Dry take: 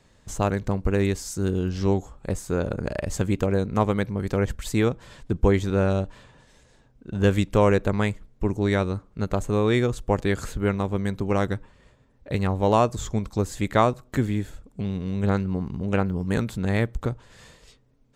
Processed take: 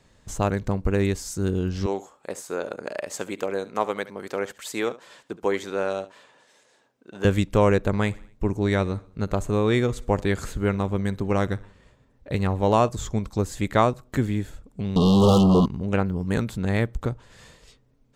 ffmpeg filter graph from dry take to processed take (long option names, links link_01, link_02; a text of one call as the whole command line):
ffmpeg -i in.wav -filter_complex "[0:a]asettb=1/sr,asplit=3[link_01][link_02][link_03];[link_01]atrim=end=1.864[link_04];[link_02]atrim=start=1.86:end=7.25,asetpts=PTS-STARTPTS,afade=type=in:duration=0.004:curve=qsin,afade=type=out:start_time=5.386:duration=0.004:curve=qsin,highpass=420,aecho=1:1:71:0.141,atrim=end_sample=237699[link_05];[link_03]atrim=start=7.246[link_06];[link_04][link_05]acrossfade=duration=0.004:curve1=hsin:curve2=qsin[link_07];[link_07][link_06]acrossfade=duration=0.004:curve1=qsin:curve2=hsin,asettb=1/sr,asplit=3[link_08][link_09][link_10];[link_08]atrim=end=7.784[link_11];[link_09]atrim=start=7.78:end=12.89,asetpts=PTS-STARTPTS,afade=type=in:duration=0.004:curve=qsin,afade=type=out:start_time=5.106:duration=0.004:curve=qsin,aecho=1:1:61|122|183|244:0.0708|0.0418|0.0246|0.0145,atrim=end_sample=225351,deesser=0.35[link_12];[link_10]atrim=start=12.886[link_13];[link_11][link_12]acrossfade=duration=0.004:curve1=hsin:curve2=qsin[link_14];[link_14][link_13]acrossfade=duration=0.004:curve1=qsin:curve2=hsin,asettb=1/sr,asplit=3[link_15][link_16][link_17];[link_15]atrim=end=14.964[link_18];[link_16]atrim=start=14.96:end=15.66,asetpts=PTS-STARTPTS,afade=type=in:duration=0.004:curve=qsin,afade=type=out:start_time=0.696:duration=0.004:curve=qsin,asplit=2[link_19][link_20];[link_20]highpass=frequency=720:poles=1,volume=37dB,asoftclip=type=tanh:threshold=-8.5dB[link_21];[link_19][link_21]amix=inputs=2:normalize=0,lowpass=frequency=4000:poles=1,volume=-6dB,asuperstop=centerf=1900:order=20:qfactor=1.2[link_22];[link_17]atrim=start=15.656[link_23];[link_18][link_22]acrossfade=duration=0.004:curve1=hsin:curve2=qsin[link_24];[link_24][link_23]acrossfade=duration=0.004:curve1=qsin:curve2=hsin" out.wav